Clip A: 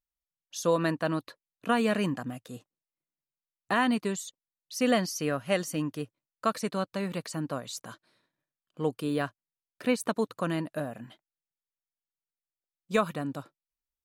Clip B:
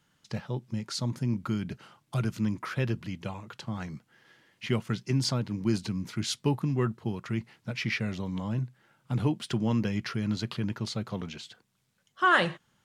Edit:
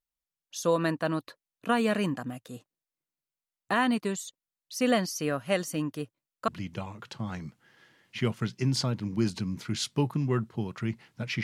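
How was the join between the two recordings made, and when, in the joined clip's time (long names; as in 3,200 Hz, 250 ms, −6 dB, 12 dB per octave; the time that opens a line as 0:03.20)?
clip A
0:06.48: continue with clip B from 0:02.96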